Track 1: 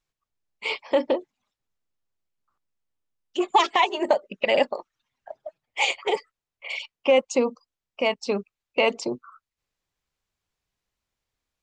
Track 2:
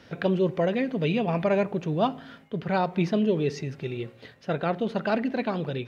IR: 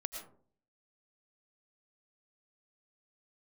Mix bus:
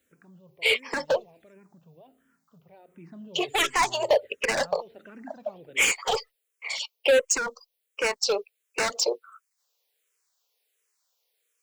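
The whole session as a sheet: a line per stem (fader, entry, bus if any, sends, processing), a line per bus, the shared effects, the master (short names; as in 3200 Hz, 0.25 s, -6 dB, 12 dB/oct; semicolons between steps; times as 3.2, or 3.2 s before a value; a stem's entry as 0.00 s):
+2.0 dB, 0.00 s, no send, resonant high-pass 460 Hz, resonance Q 5; tilt +4.5 dB/oct; hard clip -17 dBFS, distortion -7 dB
2.66 s -22 dB -> 3.18 s -13.5 dB, 0.00 s, no send, LPF 2800 Hz; notches 50/100/150 Hz; limiter -20.5 dBFS, peak gain reduction 8 dB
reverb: off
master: endless phaser -1.4 Hz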